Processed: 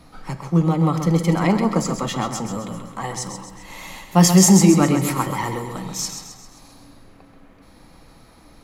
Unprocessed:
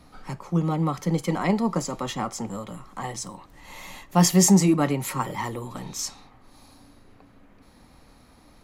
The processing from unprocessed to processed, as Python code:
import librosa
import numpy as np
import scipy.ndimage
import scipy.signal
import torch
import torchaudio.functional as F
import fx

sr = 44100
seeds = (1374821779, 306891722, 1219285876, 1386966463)

p1 = x + fx.echo_feedback(x, sr, ms=132, feedback_pct=49, wet_db=-8.0, dry=0)
p2 = fx.room_shoebox(p1, sr, seeds[0], volume_m3=2300.0, walls='furnished', distance_m=0.69)
y = p2 * librosa.db_to_amplitude(4.0)